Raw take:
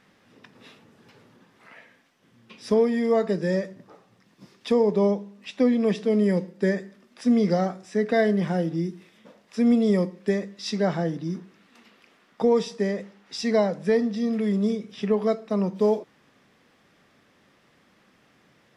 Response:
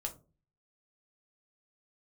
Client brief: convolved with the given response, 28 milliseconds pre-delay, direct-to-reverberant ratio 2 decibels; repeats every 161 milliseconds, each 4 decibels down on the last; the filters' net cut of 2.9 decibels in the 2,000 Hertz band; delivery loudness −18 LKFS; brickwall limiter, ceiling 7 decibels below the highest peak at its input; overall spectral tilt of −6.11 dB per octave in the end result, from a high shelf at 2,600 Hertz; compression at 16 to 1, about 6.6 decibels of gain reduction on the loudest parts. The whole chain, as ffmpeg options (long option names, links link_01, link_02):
-filter_complex "[0:a]equalizer=frequency=2000:width_type=o:gain=-5,highshelf=frequency=2600:gain=4,acompressor=threshold=-22dB:ratio=16,alimiter=limit=-20.5dB:level=0:latency=1,aecho=1:1:161|322|483|644|805|966|1127|1288|1449:0.631|0.398|0.25|0.158|0.0994|0.0626|0.0394|0.0249|0.0157,asplit=2[link_01][link_02];[1:a]atrim=start_sample=2205,adelay=28[link_03];[link_02][link_03]afir=irnorm=-1:irlink=0,volume=-2dB[link_04];[link_01][link_04]amix=inputs=2:normalize=0,volume=8.5dB"